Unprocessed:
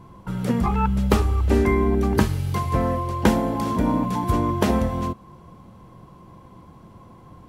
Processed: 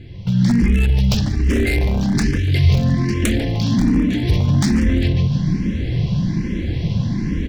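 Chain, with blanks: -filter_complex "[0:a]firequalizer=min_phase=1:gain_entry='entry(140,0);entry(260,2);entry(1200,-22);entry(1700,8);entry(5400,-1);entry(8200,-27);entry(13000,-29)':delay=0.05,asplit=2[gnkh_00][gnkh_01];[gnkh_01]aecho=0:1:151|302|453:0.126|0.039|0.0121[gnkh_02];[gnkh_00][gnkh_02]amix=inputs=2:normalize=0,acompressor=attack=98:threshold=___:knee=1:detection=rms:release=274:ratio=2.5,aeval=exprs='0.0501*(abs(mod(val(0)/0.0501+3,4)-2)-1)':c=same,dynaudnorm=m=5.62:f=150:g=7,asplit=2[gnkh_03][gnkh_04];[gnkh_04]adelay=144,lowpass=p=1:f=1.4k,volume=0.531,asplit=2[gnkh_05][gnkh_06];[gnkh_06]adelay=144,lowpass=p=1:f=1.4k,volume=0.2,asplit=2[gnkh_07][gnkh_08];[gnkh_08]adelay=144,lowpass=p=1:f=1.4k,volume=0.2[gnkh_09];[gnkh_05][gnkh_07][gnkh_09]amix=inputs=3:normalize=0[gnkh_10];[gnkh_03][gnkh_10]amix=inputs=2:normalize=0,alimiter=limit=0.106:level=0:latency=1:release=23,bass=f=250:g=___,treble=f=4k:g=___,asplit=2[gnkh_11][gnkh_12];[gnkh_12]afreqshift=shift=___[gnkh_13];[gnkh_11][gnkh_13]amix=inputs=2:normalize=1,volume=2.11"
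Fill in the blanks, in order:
0.0141, 9, 15, 1.2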